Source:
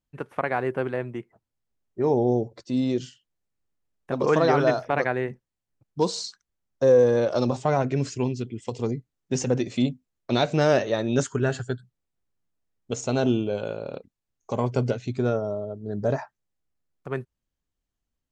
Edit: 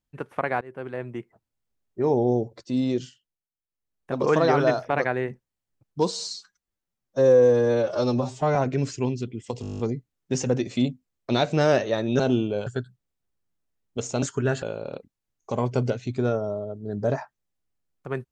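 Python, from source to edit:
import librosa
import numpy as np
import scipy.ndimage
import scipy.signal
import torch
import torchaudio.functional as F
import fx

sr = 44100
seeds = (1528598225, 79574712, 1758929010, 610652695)

y = fx.edit(x, sr, fx.fade_in_from(start_s=0.61, length_s=0.58, floor_db=-24.0),
    fx.fade_down_up(start_s=2.97, length_s=1.2, db=-17.5, fade_s=0.48),
    fx.stretch_span(start_s=6.11, length_s=1.63, factor=1.5),
    fx.stutter(start_s=8.8, slice_s=0.02, count=10),
    fx.swap(start_s=11.2, length_s=0.4, other_s=13.16, other_length_s=0.47), tone=tone)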